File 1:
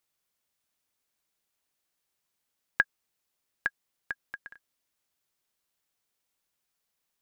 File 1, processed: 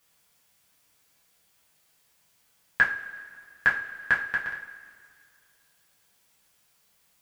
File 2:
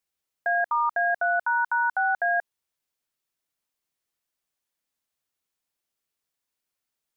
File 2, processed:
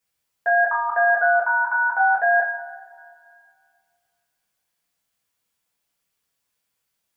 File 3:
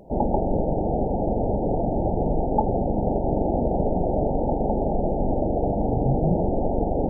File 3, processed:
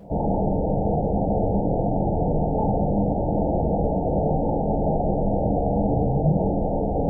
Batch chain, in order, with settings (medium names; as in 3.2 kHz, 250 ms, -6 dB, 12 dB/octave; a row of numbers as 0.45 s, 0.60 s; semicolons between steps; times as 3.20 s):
peak limiter -18.5 dBFS; two-slope reverb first 0.33 s, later 2.2 s, from -18 dB, DRR -6 dB; peak normalisation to -9 dBFS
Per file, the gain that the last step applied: +8.5 dB, +1.0 dB, -2.0 dB